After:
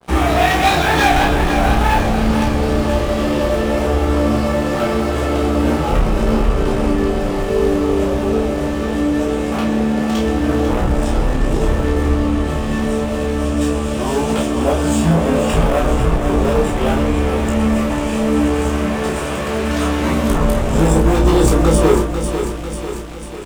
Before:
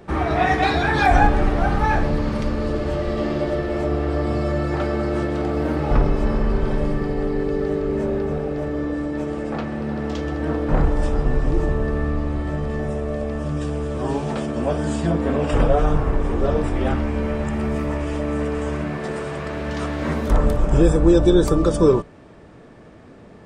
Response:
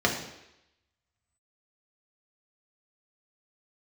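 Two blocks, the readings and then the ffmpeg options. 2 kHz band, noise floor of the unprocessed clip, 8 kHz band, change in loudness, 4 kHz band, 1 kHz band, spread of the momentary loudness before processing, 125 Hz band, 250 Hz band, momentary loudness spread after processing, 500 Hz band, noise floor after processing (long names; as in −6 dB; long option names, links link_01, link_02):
+5.5 dB, −44 dBFS, +13.5 dB, +5.0 dB, +10.0 dB, +5.5 dB, 9 LU, +4.0 dB, +6.0 dB, 6 LU, +4.5 dB, −21 dBFS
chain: -filter_complex "[0:a]acontrast=77,aeval=exprs='sgn(val(0))*max(abs(val(0))-0.0211,0)':channel_layout=same,areverse,acompressor=mode=upward:threshold=-28dB:ratio=2.5,areverse,asoftclip=type=tanh:threshold=-13.5dB,aexciter=amount=1.9:drive=5.5:freq=2500,flanger=delay=16:depth=3.4:speed=0.75,bandreject=frequency=50:width_type=h:width=6,bandreject=frequency=100:width_type=h:width=6,bandreject=frequency=150:width_type=h:width=6,bandreject=frequency=200:width_type=h:width=6,bandreject=frequency=250:width_type=h:width=6,bandreject=frequency=300:width_type=h:width=6,bandreject=frequency=350:width_type=h:width=6,asplit=2[link_01][link_02];[link_02]adelay=31,volume=-5dB[link_03];[link_01][link_03]amix=inputs=2:normalize=0,asplit=2[link_04][link_05];[link_05]aecho=0:1:495|990|1485|1980|2475|2970:0.376|0.203|0.11|0.0592|0.032|0.0173[link_06];[link_04][link_06]amix=inputs=2:normalize=0,adynamicequalizer=threshold=0.0224:dfrequency=1800:dqfactor=0.7:tfrequency=1800:tqfactor=0.7:attack=5:release=100:ratio=0.375:range=2:mode=cutabove:tftype=highshelf,volume=5.5dB"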